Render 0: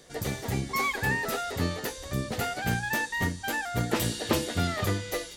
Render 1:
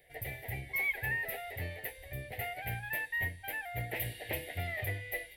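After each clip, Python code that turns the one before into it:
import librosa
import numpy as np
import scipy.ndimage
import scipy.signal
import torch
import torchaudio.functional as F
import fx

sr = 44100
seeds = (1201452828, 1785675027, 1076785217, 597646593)

y = fx.curve_eq(x, sr, hz=(120.0, 210.0, 730.0, 1200.0, 2000.0, 6600.0, 12000.0), db=(0, -17, 2, -23, 10, -24, 7))
y = F.gain(torch.from_numpy(y), -8.0).numpy()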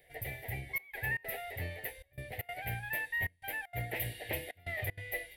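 y = fx.step_gate(x, sr, bpm=193, pattern='xxxxxxxxxx..xxx.', floor_db=-24.0, edge_ms=4.5)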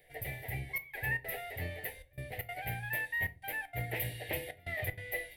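y = fx.room_shoebox(x, sr, seeds[0], volume_m3=150.0, walls='furnished', distance_m=0.46)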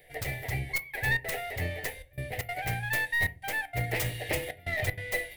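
y = fx.tracing_dist(x, sr, depth_ms=0.18)
y = F.gain(torch.from_numpy(y), 6.5).numpy()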